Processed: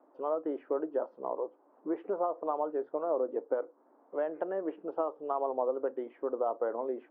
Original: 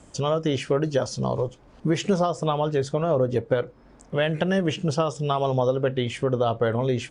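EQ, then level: elliptic high-pass 290 Hz, stop band 80 dB; four-pole ladder low-pass 1.3 kHz, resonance 30%; distance through air 93 m; -2.0 dB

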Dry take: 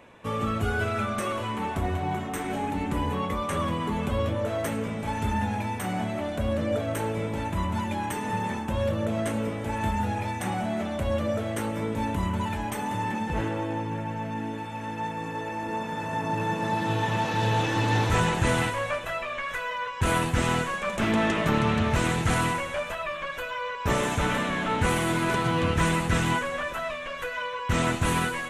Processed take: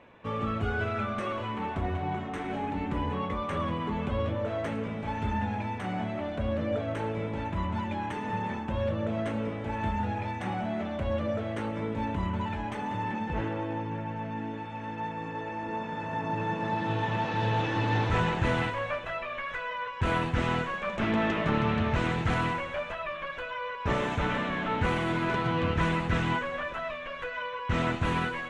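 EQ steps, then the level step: low-pass 3.6 kHz 12 dB/octave; -3.0 dB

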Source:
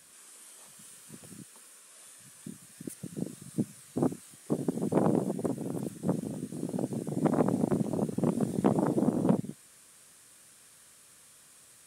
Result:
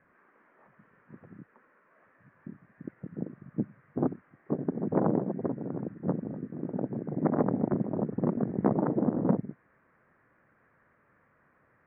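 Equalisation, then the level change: steep low-pass 2 kHz 48 dB/octave; 0.0 dB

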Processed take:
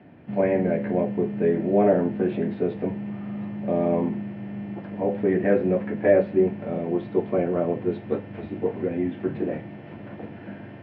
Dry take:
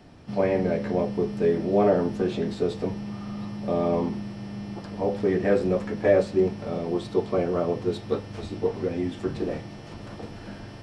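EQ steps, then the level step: distance through air 59 m; cabinet simulation 140–2400 Hz, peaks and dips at 450 Hz -4 dB, 840 Hz -4 dB, 1.2 kHz -10 dB; +3.5 dB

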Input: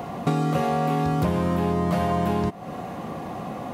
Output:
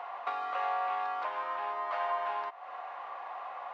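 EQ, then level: high-pass 890 Hz 24 dB/octave; distance through air 110 m; tape spacing loss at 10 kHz 33 dB; +3.5 dB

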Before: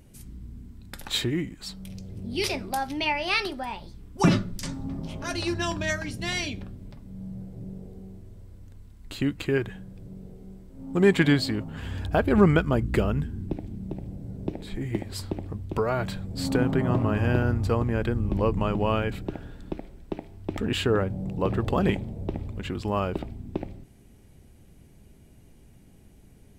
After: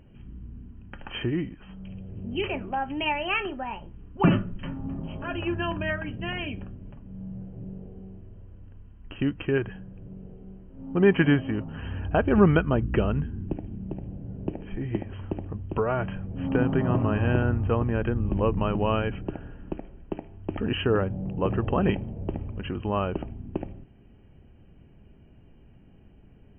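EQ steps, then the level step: brick-wall FIR low-pass 3.2 kHz; band-stop 2.1 kHz, Q 7.3; 0.0 dB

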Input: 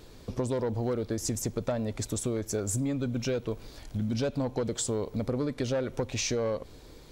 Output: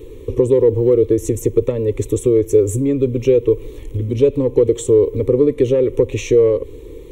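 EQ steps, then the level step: resonant low shelf 580 Hz +8 dB, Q 3; peaking EQ 5.7 kHz +2.5 dB 0.27 oct; static phaser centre 1 kHz, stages 8; +7.5 dB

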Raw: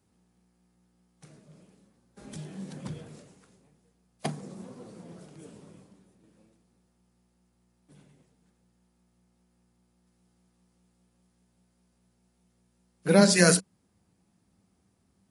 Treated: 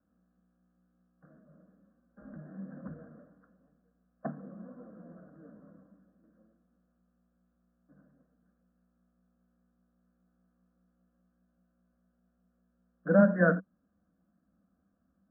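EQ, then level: steep low-pass 1.7 kHz 96 dB/octave; static phaser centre 590 Hz, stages 8; -1.0 dB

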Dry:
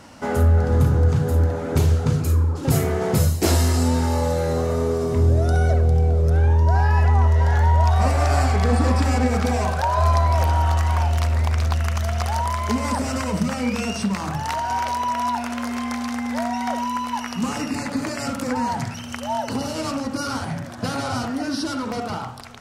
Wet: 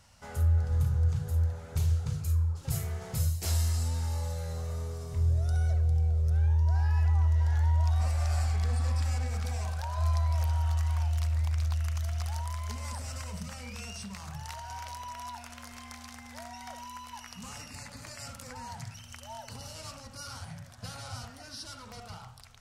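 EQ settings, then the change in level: tilt shelf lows +10 dB, about 830 Hz; amplifier tone stack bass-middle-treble 10-0-10; treble shelf 2.3 kHz +10 dB; -8.5 dB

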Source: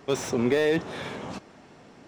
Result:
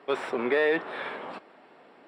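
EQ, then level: dynamic bell 1.5 kHz, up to +6 dB, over -43 dBFS, Q 1; boxcar filter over 7 samples; high-pass 390 Hz 12 dB/octave; 0.0 dB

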